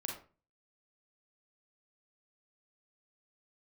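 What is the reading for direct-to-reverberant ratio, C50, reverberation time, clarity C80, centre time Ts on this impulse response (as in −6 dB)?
0.0 dB, 3.5 dB, 0.35 s, 10.5 dB, 31 ms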